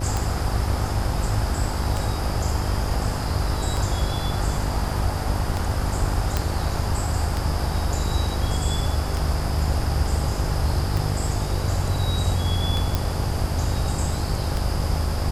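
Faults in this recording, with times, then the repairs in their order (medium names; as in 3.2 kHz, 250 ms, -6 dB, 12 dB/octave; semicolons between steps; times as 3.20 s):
buzz 50 Hz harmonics 15 -28 dBFS
tick 33 1/3 rpm
6.37 s: pop -7 dBFS
12.95 s: pop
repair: de-click; de-hum 50 Hz, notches 15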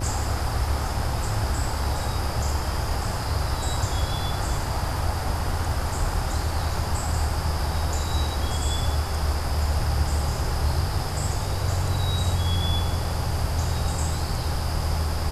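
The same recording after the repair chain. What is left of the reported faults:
nothing left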